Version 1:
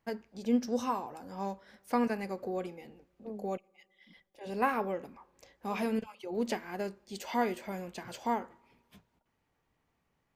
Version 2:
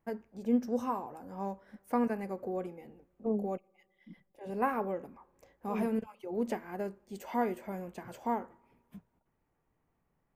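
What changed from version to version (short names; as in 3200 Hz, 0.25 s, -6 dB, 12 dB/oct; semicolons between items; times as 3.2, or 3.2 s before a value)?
second voice +11.0 dB; master: add bell 4300 Hz -13.5 dB 1.8 oct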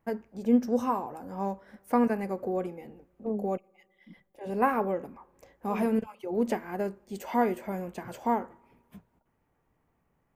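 first voice +5.5 dB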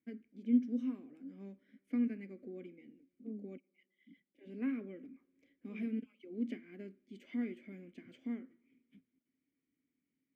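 master: add vowel filter i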